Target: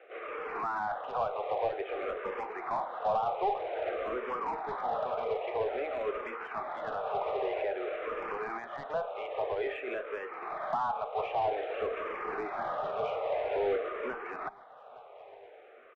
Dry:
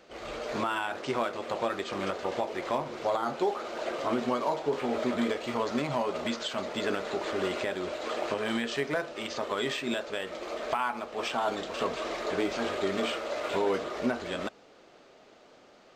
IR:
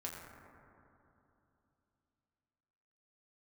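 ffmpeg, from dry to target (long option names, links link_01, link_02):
-filter_complex "[0:a]highpass=frequency=380:width=0.5412,highpass=frequency=380:width=1.3066,equalizer=frequency=450:width_type=q:width=4:gain=7,equalizer=frequency=760:width_type=q:width=4:gain=9,equalizer=frequency=1200:width_type=q:width=4:gain=5,equalizer=frequency=2400:width_type=q:width=4:gain=5,lowpass=frequency=2500:width=0.5412,lowpass=frequency=2500:width=1.3066,aresample=8000,acrusher=bits=4:mode=log:mix=0:aa=0.000001,aresample=44100,asplit=2[link_01][link_02];[link_02]highpass=frequency=720:poles=1,volume=18dB,asoftclip=type=tanh:threshold=-10dB[link_03];[link_01][link_03]amix=inputs=2:normalize=0,lowpass=frequency=1800:poles=1,volume=-6dB,aecho=1:1:863|1726|2589:0.0631|0.0341|0.0184,acrossover=split=970[link_04][link_05];[link_05]alimiter=limit=-24dB:level=0:latency=1:release=154[link_06];[link_04][link_06]amix=inputs=2:normalize=0,asplit=2[link_07][link_08];[link_08]afreqshift=-0.51[link_09];[link_07][link_09]amix=inputs=2:normalize=1,volume=-8dB"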